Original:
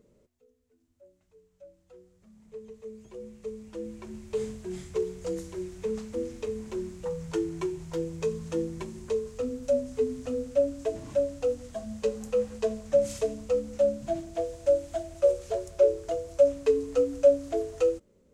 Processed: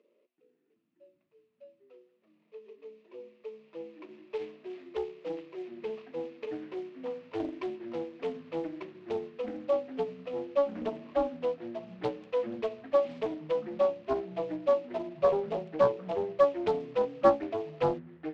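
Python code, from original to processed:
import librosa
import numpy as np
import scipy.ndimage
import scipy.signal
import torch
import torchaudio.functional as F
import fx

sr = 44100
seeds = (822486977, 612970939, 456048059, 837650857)

y = scipy.ndimage.median_filter(x, 15, mode='constant')
y = fx.cabinet(y, sr, low_hz=360.0, low_slope=24, high_hz=4200.0, hz=(450.0, 810.0, 1500.0, 2600.0), db=(-4, -9, -8, 8))
y = fx.echo_pitch(y, sr, ms=381, semitones=-6, count=3, db_per_echo=-6.0)
y = fx.doppler_dist(y, sr, depth_ms=0.53)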